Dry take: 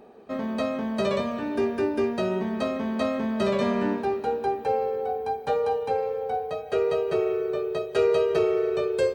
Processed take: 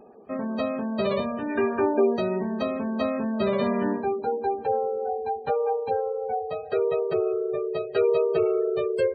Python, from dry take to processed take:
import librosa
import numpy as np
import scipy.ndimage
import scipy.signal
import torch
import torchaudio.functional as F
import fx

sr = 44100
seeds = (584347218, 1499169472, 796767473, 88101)

y = fx.peak_eq(x, sr, hz=fx.line((1.48, 2100.0), (2.16, 460.0)), db=10.0, octaves=1.2, at=(1.48, 2.16), fade=0.02)
y = fx.spec_gate(y, sr, threshold_db=-25, keep='strong')